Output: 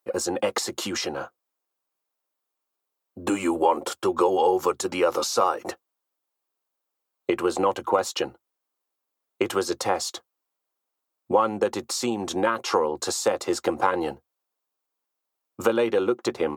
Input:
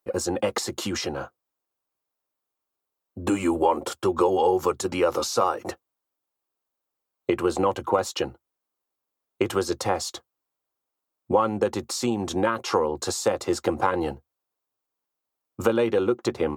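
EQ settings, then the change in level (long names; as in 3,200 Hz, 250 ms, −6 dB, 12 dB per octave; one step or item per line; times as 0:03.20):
high-pass filter 290 Hz 6 dB per octave
+1.5 dB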